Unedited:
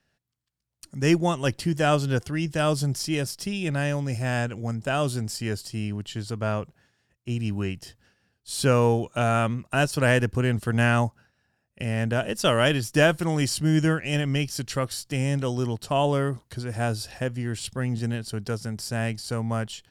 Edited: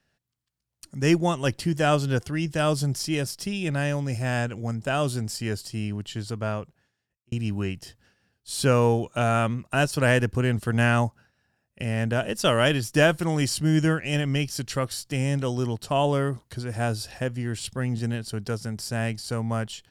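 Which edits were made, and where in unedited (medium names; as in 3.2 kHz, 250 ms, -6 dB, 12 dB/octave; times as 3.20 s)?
6.29–7.32 s: fade out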